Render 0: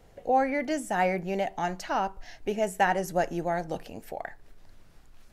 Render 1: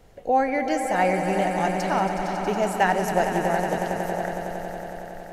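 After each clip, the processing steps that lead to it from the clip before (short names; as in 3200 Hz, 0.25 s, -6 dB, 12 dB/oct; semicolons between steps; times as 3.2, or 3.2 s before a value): swelling echo 92 ms, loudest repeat 5, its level -11 dB; gain +3 dB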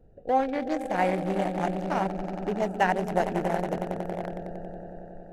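Wiener smoothing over 41 samples; gain -2 dB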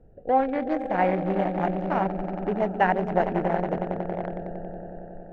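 LPF 2300 Hz 12 dB/oct; gain +2.5 dB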